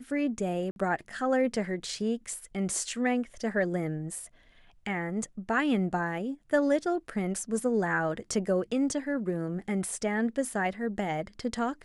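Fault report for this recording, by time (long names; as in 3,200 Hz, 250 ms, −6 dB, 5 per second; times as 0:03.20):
0:00.71–0:00.76: drop-out 51 ms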